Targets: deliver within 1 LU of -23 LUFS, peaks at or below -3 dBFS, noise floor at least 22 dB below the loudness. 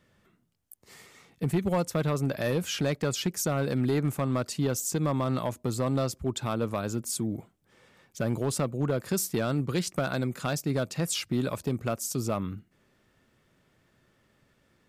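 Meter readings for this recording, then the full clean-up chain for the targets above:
clipped 1.0%; flat tops at -19.5 dBFS; loudness -29.5 LUFS; peak -19.5 dBFS; loudness target -23.0 LUFS
-> clip repair -19.5 dBFS; gain +6.5 dB

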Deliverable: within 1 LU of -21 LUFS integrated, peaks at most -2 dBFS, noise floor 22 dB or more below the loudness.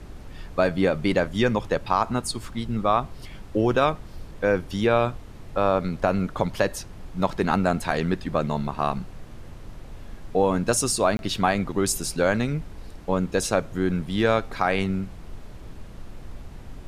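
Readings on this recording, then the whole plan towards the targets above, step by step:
dropouts 1; longest dropout 21 ms; noise floor -42 dBFS; noise floor target -47 dBFS; loudness -24.5 LUFS; peak -7.0 dBFS; loudness target -21.0 LUFS
-> interpolate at 11.17, 21 ms; noise print and reduce 6 dB; gain +3.5 dB

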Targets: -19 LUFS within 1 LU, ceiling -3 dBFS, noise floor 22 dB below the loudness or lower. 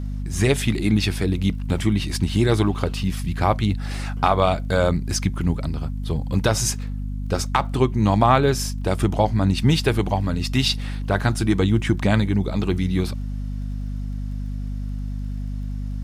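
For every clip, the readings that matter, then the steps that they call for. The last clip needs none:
ticks 23/s; hum 50 Hz; harmonics up to 250 Hz; hum level -25 dBFS; loudness -22.5 LUFS; peak -4.0 dBFS; loudness target -19.0 LUFS
-> de-click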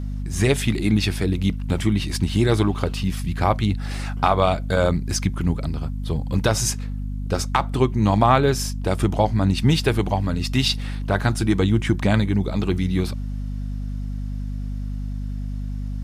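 ticks 0.062/s; hum 50 Hz; harmonics up to 250 Hz; hum level -25 dBFS
-> notches 50/100/150/200/250 Hz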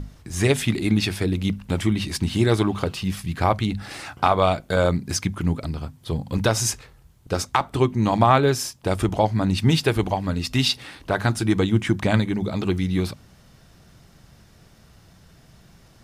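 hum none; loudness -22.5 LUFS; peak -4.5 dBFS; loudness target -19.0 LUFS
-> gain +3.5 dB; limiter -3 dBFS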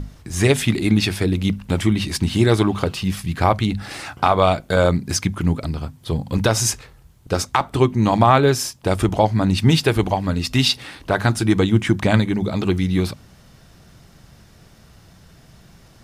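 loudness -19.5 LUFS; peak -3.0 dBFS; noise floor -49 dBFS

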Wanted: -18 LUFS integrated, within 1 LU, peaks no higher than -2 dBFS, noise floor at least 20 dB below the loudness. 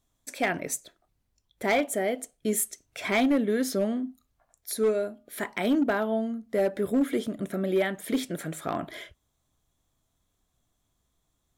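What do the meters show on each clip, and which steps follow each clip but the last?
clipped 0.7%; flat tops at -18.0 dBFS; loudness -28.5 LUFS; peak -18.0 dBFS; loudness target -18.0 LUFS
-> clip repair -18 dBFS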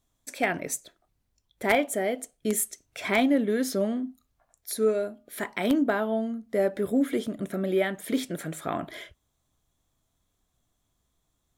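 clipped 0.0%; loudness -28.0 LUFS; peak -9.0 dBFS; loudness target -18.0 LUFS
-> gain +10 dB; limiter -2 dBFS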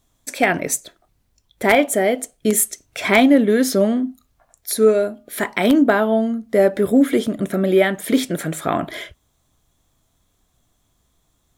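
loudness -18.0 LUFS; peak -2.0 dBFS; noise floor -66 dBFS

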